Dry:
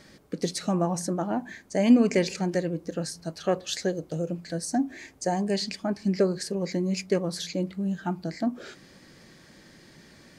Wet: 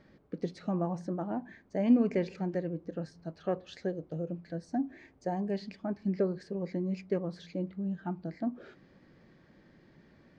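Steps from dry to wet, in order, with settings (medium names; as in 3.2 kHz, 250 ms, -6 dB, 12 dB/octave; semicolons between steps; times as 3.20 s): tape spacing loss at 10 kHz 33 dB; trim -5 dB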